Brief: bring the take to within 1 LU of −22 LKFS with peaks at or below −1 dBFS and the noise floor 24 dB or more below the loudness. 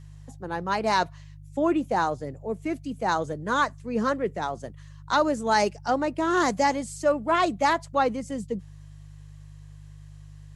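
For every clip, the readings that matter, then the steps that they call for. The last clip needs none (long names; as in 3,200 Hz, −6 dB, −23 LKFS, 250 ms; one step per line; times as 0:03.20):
mains hum 50 Hz; hum harmonics up to 150 Hz; level of the hum −43 dBFS; integrated loudness −26.0 LKFS; sample peak −10.0 dBFS; target loudness −22.0 LKFS
→ hum removal 50 Hz, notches 3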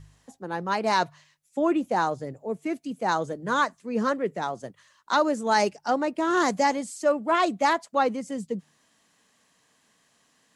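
mains hum none found; integrated loudness −26.0 LKFS; sample peak −10.5 dBFS; target loudness −22.0 LKFS
→ level +4 dB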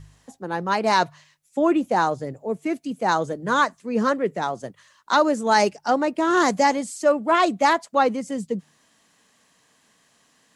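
integrated loudness −22.0 LKFS; sample peak −6.5 dBFS; background noise floor −63 dBFS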